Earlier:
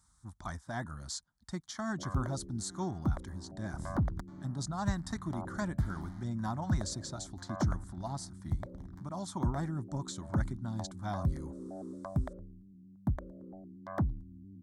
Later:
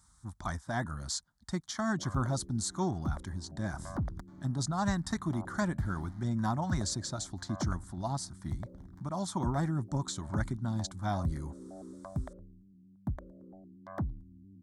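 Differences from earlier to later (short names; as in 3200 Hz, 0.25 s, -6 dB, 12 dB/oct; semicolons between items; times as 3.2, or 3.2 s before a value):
speech +4.5 dB; background -3.5 dB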